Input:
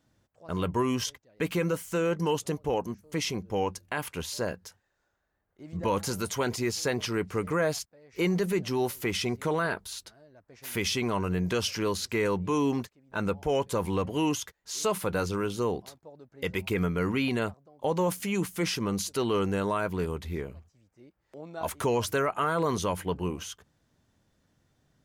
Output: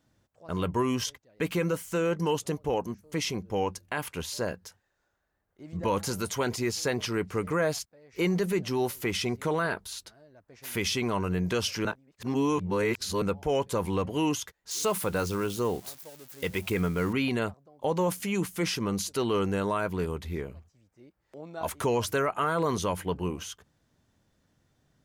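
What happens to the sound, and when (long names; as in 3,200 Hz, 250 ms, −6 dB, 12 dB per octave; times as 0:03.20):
0:11.85–0:13.22: reverse
0:14.71–0:17.13: spike at every zero crossing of −35 dBFS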